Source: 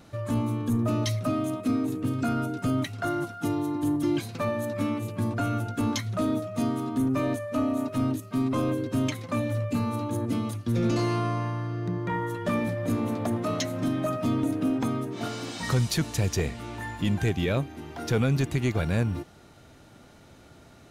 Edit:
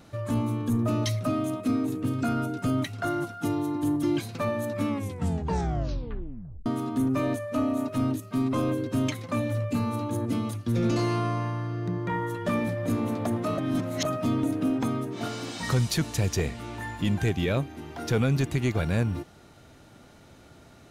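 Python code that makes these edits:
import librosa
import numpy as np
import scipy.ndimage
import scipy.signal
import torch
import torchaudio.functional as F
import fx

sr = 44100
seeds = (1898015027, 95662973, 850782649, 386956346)

y = fx.edit(x, sr, fx.tape_stop(start_s=4.88, length_s=1.78),
    fx.reverse_span(start_s=13.58, length_s=0.47), tone=tone)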